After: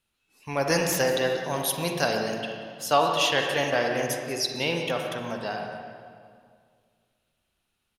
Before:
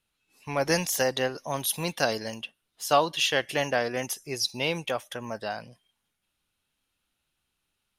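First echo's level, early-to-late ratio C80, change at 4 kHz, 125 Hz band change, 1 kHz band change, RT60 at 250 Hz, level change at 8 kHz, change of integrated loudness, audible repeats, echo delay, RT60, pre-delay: -14.5 dB, 3.5 dB, +1.0 dB, +2.5 dB, +2.5 dB, 2.3 s, 0.0 dB, +1.5 dB, 1, 0.184 s, 2.1 s, 39 ms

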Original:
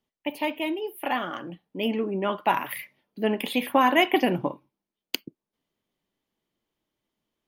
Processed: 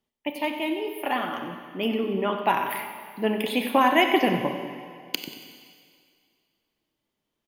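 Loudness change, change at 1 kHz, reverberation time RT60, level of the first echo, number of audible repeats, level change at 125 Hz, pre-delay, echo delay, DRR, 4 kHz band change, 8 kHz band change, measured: +0.5 dB, +1.0 dB, 2.1 s, -12.5 dB, 2, +0.5 dB, 25 ms, 93 ms, 5.5 dB, +1.0 dB, +1.0 dB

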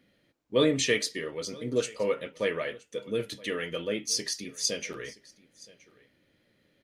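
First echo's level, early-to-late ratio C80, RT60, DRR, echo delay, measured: -22.0 dB, none, none, none, 0.972 s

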